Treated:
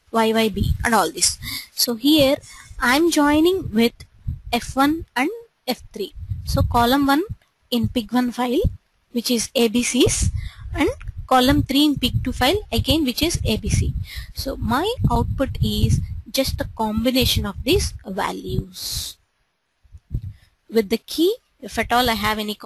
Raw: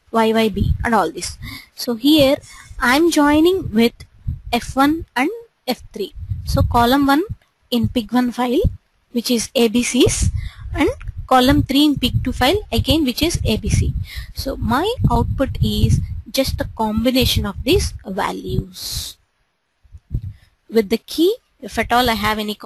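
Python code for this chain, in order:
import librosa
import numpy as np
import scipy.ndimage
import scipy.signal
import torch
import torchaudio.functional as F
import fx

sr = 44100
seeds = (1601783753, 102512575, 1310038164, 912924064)

y = fx.peak_eq(x, sr, hz=8700.0, db=fx.steps((0.0, 5.0), (0.63, 14.0), (1.9, 2.5)), octaves=2.7)
y = F.gain(torch.from_numpy(y), -3.0).numpy()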